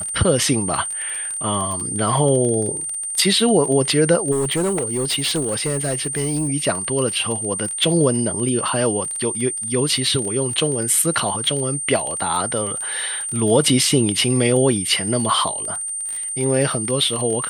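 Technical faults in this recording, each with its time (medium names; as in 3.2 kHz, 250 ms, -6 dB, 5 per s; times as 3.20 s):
crackle 25 per s -24 dBFS
whine 8.8 kHz -24 dBFS
4.31–6.49 s: clipped -17 dBFS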